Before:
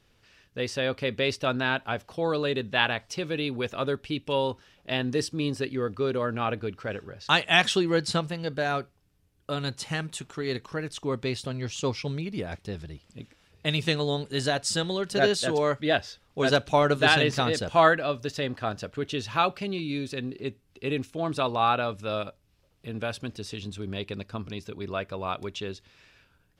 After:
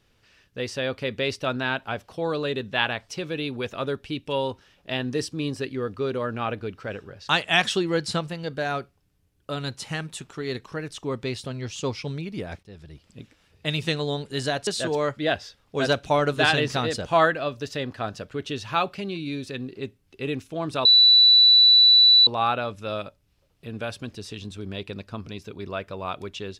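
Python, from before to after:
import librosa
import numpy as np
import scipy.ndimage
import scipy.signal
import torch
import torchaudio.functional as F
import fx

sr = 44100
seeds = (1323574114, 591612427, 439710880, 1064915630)

y = fx.edit(x, sr, fx.fade_in_from(start_s=12.63, length_s=0.43, floor_db=-16.0),
    fx.cut(start_s=14.67, length_s=0.63),
    fx.insert_tone(at_s=21.48, length_s=1.42, hz=3960.0, db=-11.0), tone=tone)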